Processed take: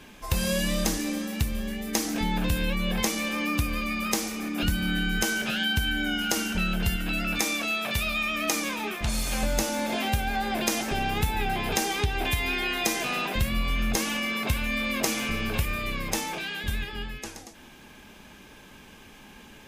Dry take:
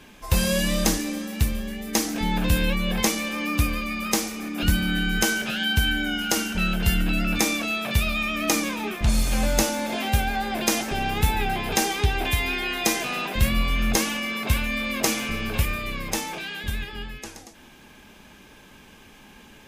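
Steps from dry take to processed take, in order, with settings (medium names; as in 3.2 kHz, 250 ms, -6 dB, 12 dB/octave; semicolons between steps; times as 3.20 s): 6.96–9.43 s: bass shelf 350 Hz -7 dB; compression 3:1, threshold -23 dBFS, peak gain reduction 7.5 dB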